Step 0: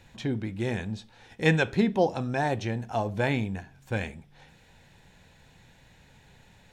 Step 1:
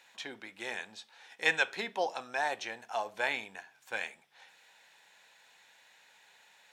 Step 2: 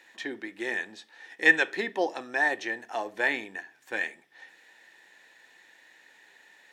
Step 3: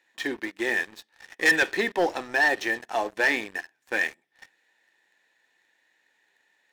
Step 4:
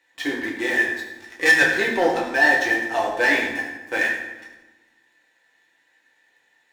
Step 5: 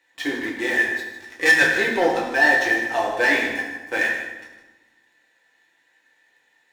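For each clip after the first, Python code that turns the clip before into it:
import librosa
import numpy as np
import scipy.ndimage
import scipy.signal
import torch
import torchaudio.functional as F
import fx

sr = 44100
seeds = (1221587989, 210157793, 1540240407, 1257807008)

y1 = scipy.signal.sosfilt(scipy.signal.butter(2, 870.0, 'highpass', fs=sr, output='sos'), x)
y2 = fx.small_body(y1, sr, hz=(320.0, 1800.0), ring_ms=25, db=15)
y3 = fx.leveller(y2, sr, passes=3)
y3 = F.gain(torch.from_numpy(y3), -5.5).numpy()
y4 = fx.rev_fdn(y3, sr, rt60_s=1.1, lf_ratio=1.35, hf_ratio=0.75, size_ms=60.0, drr_db=-3.0)
y5 = y4 + 10.0 ** (-12.0 / 20.0) * np.pad(y4, (int(154 * sr / 1000.0), 0))[:len(y4)]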